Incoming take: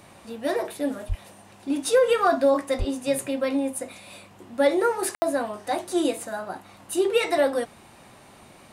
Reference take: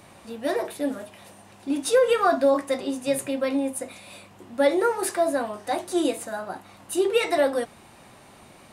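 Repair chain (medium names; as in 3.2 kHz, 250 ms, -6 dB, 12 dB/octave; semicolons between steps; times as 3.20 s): clip repair -10 dBFS; 1.08–1.20 s: high-pass 140 Hz 24 dB/octave; 2.78–2.90 s: high-pass 140 Hz 24 dB/octave; room tone fill 5.15–5.22 s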